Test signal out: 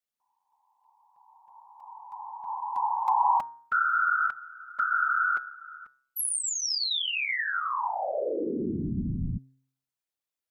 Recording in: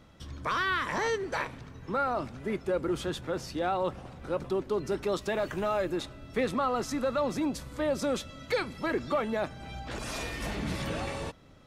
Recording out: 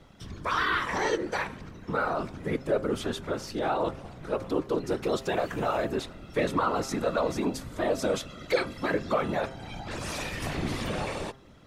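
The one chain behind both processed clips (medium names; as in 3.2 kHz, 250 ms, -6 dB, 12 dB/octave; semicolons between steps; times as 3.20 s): whisper effect; de-hum 133 Hz, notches 14; trim +2 dB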